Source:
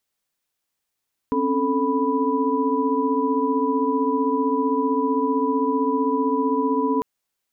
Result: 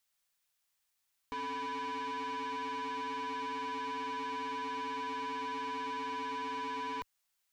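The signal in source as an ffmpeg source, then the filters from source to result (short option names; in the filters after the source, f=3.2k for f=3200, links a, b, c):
-f lavfi -i "aevalsrc='0.0631*(sin(2*PI*261.63*t)+sin(2*PI*277.18*t)+sin(2*PI*440*t)+sin(2*PI*987.77*t))':d=5.7:s=44100"
-af "equalizer=f=300:t=o:w=2.2:g=-12.5,asoftclip=type=tanh:threshold=-36.5dB,equalizer=f=71:t=o:w=2.9:g=-3.5"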